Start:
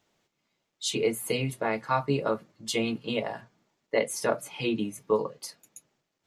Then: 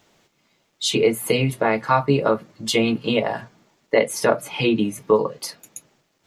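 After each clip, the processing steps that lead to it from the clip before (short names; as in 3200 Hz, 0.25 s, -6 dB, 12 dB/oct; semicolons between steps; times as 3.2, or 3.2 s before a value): dynamic EQ 8000 Hz, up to -6 dB, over -50 dBFS, Q 0.72; in parallel at +1.5 dB: compressor, threshold -34 dBFS, peak gain reduction 14 dB; on the sum: gain +6 dB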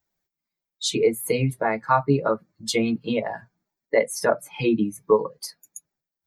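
per-bin expansion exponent 1.5; bell 2900 Hz -10.5 dB 0.33 oct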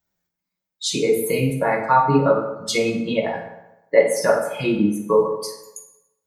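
reverb RT60 0.95 s, pre-delay 3 ms, DRR -1 dB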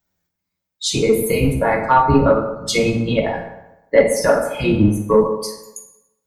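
octaver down 1 oct, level -2 dB; soft clip -3 dBFS, distortion -25 dB; gain +3 dB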